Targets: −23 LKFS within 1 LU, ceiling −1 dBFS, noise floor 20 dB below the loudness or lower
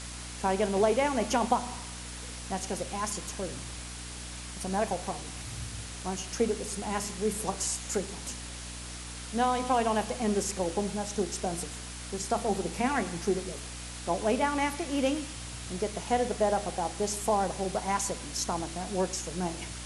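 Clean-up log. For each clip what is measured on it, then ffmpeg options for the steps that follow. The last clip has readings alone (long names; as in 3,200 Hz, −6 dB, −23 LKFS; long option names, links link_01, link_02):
mains hum 60 Hz; hum harmonics up to 300 Hz; level of the hum −41 dBFS; background noise floor −41 dBFS; target noise floor −52 dBFS; integrated loudness −31.5 LKFS; sample peak −12.0 dBFS; target loudness −23.0 LKFS
→ -af "bandreject=frequency=60:width_type=h:width=4,bandreject=frequency=120:width_type=h:width=4,bandreject=frequency=180:width_type=h:width=4,bandreject=frequency=240:width_type=h:width=4,bandreject=frequency=300:width_type=h:width=4"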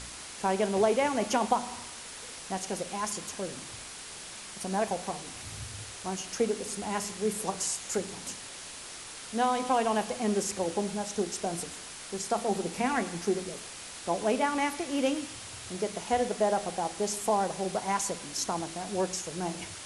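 mains hum none found; background noise floor −44 dBFS; target noise floor −52 dBFS
→ -af "afftdn=noise_reduction=8:noise_floor=-44"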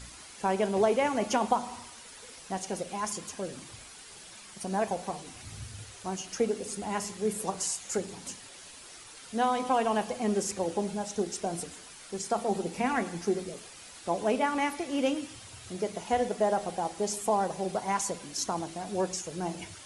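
background noise floor −49 dBFS; target noise floor −52 dBFS
→ -af "afftdn=noise_reduction=6:noise_floor=-49"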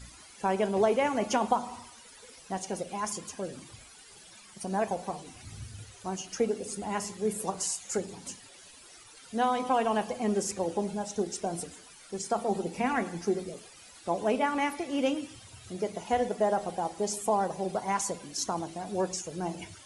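background noise floor −53 dBFS; integrated loudness −31.5 LKFS; sample peak −12.0 dBFS; target loudness −23.0 LKFS
→ -af "volume=8.5dB"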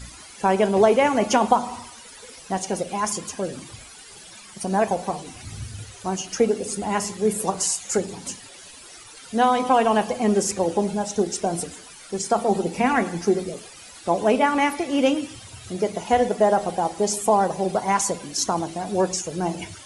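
integrated loudness −23.0 LKFS; sample peak −3.5 dBFS; background noise floor −44 dBFS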